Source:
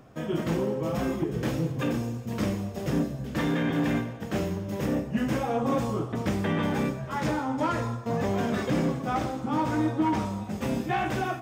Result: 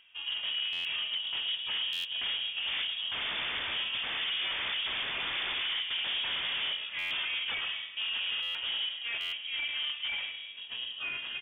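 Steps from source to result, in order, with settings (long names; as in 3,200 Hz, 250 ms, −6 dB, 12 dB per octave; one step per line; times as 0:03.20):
source passing by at 0:04.39, 25 m/s, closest 21 metres
high-pass filter 260 Hz 12 dB per octave
notch filter 1,300 Hz, Q 7.1
in parallel at −1 dB: brickwall limiter −29.5 dBFS, peak gain reduction 9 dB
on the sum: formants moved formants +5 semitones
wave folding −32.5 dBFS
high-frequency loss of the air 450 metres
on a send: repeating echo 107 ms, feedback 47%, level −12.5 dB
on the sum: voice inversion scrambler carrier 3,500 Hz
buffer that repeats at 0:00.72/0:01.92/0:06.98/0:08.42/0:09.20, samples 512, times 10
level +6 dB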